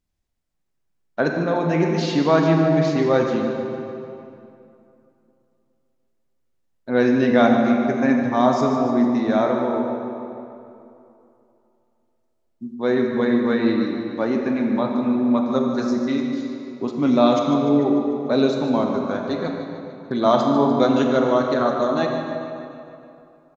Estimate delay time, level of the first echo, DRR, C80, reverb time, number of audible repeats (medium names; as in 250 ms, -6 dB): 148 ms, -11.5 dB, 1.5 dB, 3.0 dB, 2.7 s, 4